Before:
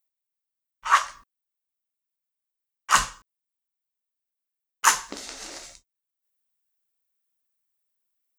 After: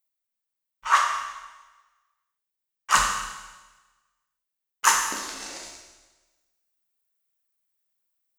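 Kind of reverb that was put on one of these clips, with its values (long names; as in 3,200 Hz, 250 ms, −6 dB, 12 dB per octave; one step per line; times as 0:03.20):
four-comb reverb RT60 1.2 s, combs from 26 ms, DRR 2.5 dB
level −1 dB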